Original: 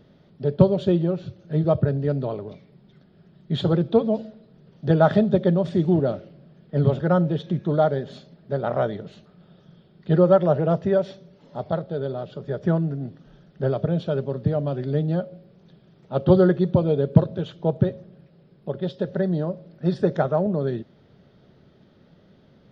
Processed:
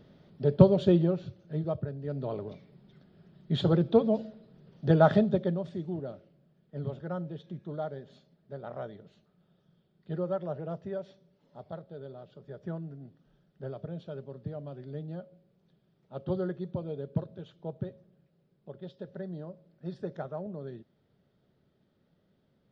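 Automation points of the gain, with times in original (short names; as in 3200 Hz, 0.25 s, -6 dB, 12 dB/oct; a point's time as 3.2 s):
1 s -2.5 dB
1.96 s -15.5 dB
2.38 s -4 dB
5.13 s -4 dB
5.84 s -16 dB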